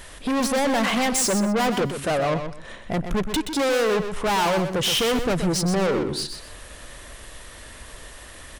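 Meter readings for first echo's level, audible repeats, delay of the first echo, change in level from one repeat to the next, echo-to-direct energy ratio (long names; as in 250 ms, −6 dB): −8.5 dB, 2, 125 ms, −13.0 dB, −8.5 dB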